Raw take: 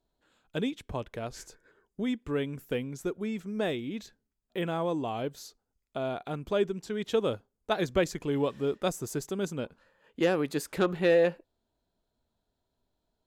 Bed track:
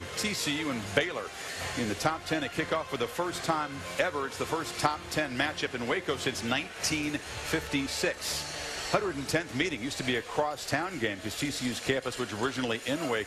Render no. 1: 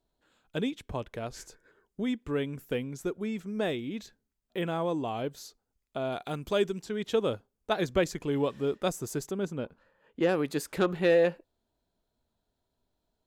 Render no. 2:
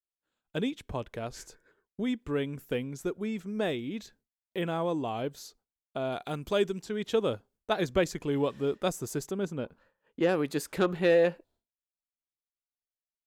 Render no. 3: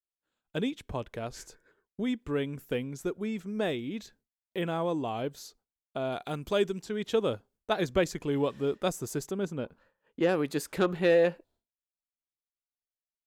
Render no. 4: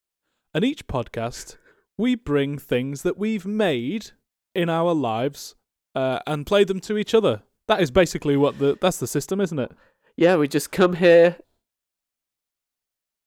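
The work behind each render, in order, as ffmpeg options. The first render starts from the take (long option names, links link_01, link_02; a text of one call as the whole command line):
ffmpeg -i in.wav -filter_complex "[0:a]asettb=1/sr,asplit=3[link_01][link_02][link_03];[link_01]atrim=end=6.124[link_04];[link_02]atrim=start=6.12:end=6.83,asetpts=PTS-STARTPTS,afade=type=in:duration=0.004:curve=qsin,afade=type=out:start_time=0.706:duration=0.004:curve=qsin,highshelf=frequency=3100:gain=9.5[link_05];[link_03]atrim=start=6.826[link_06];[link_04][link_05]acrossfade=duration=0.004:curve1=hsin:curve2=qsin[link_07];[link_07][link_06]acrossfade=duration=0.004:curve1=qsin:curve2=hsin,asettb=1/sr,asplit=3[link_08][link_09][link_10];[link_08]atrim=end=9.314[link_11];[link_09]atrim=start=9.31:end=10.29,asetpts=PTS-STARTPTS,afade=type=in:duration=0.004:curve=qsin,afade=type=out:start_time=0.976:duration=0.004:curve=qsin,highshelf=frequency=3300:gain=-10[link_12];[link_10]atrim=start=10.286[link_13];[link_11][link_12]acrossfade=duration=0.004:curve1=hsin:curve2=qsin[link_14];[link_14][link_13]acrossfade=duration=0.004:curve1=qsin:curve2=hsin" out.wav
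ffmpeg -i in.wav -af "agate=range=-33dB:threshold=-58dB:ratio=3:detection=peak" out.wav
ffmpeg -i in.wav -af anull out.wav
ffmpeg -i in.wav -af "volume=9.5dB" out.wav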